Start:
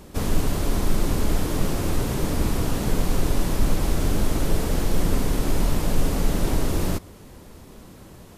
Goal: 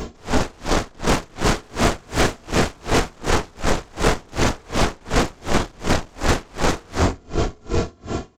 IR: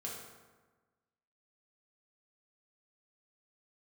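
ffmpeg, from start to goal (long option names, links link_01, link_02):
-filter_complex "[0:a]aecho=1:1:2.9:0.47,aresample=16000,volume=17.5dB,asoftclip=hard,volume=-17.5dB,aresample=44100,aecho=1:1:925:0.251[link_01];[1:a]atrim=start_sample=2205,afade=type=out:start_time=0.4:duration=0.01,atrim=end_sample=18081[link_02];[link_01][link_02]afir=irnorm=-1:irlink=0,asplit=2[link_03][link_04];[link_04]aeval=exprs='0.266*sin(PI/2*8.91*val(0)/0.266)':channel_layout=same,volume=-11dB[link_05];[link_03][link_05]amix=inputs=2:normalize=0,aeval=exprs='val(0)*pow(10,-34*(0.5-0.5*cos(2*PI*2.7*n/s))/20)':channel_layout=same,volume=8dB"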